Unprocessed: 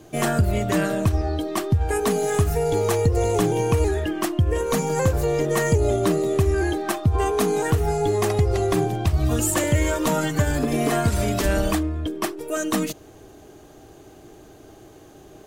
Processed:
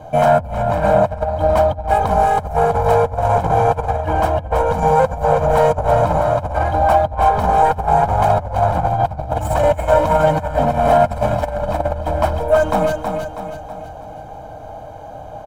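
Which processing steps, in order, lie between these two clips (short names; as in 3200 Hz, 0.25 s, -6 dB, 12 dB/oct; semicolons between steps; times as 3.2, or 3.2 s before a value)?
hard clip -23.5 dBFS, distortion -7 dB; tone controls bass +5 dB, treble -10 dB; comb 1.3 ms, depth 98%; feedback echo 0.322 s, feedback 47%, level -6 dB; negative-ratio compressor -20 dBFS, ratio -0.5; band shelf 750 Hz +12.5 dB; gain -1 dB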